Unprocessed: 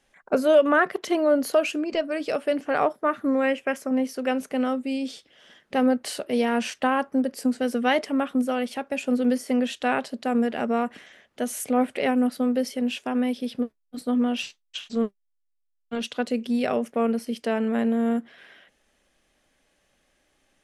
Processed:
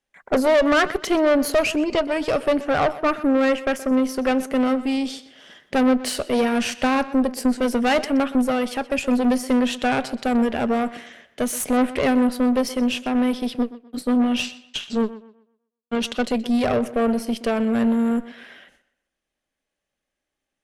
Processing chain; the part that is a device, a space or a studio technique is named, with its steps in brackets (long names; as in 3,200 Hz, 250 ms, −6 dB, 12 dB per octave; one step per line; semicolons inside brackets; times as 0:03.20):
noise gate with hold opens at −50 dBFS
rockabilly slapback (tube saturation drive 22 dB, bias 0.55; tape delay 124 ms, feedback 34%, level −15 dB, low-pass 4,300 Hz)
level +8.5 dB